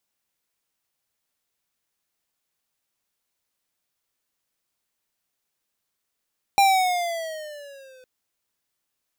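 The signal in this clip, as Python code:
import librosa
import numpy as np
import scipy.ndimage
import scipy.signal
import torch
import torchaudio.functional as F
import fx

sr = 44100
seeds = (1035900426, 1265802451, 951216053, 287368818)

y = fx.riser_tone(sr, length_s=1.46, level_db=-15.0, wave='square', hz=801.0, rise_st=-8.0, swell_db=-35.0)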